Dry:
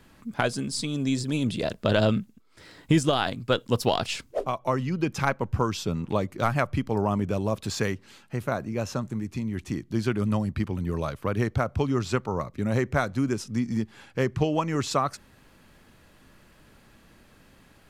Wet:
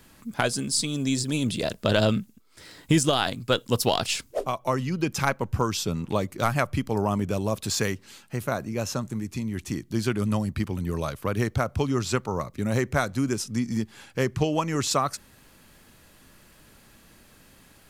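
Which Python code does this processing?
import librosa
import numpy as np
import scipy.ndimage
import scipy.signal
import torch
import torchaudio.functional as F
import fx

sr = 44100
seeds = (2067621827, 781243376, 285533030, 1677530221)

y = fx.high_shelf(x, sr, hz=5000.0, db=11.0)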